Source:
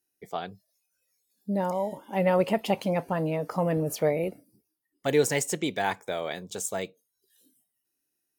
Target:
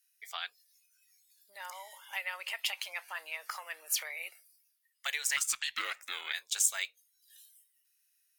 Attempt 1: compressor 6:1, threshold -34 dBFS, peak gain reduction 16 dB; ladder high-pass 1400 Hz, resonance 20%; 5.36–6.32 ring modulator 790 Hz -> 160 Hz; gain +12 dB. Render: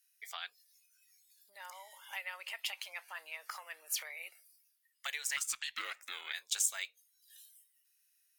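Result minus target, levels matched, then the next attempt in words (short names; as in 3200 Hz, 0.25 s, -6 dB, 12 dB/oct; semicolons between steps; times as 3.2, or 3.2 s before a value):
compressor: peak gain reduction +5 dB
compressor 6:1, threshold -28 dBFS, peak gain reduction 11 dB; ladder high-pass 1400 Hz, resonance 20%; 5.36–6.32 ring modulator 790 Hz -> 160 Hz; gain +12 dB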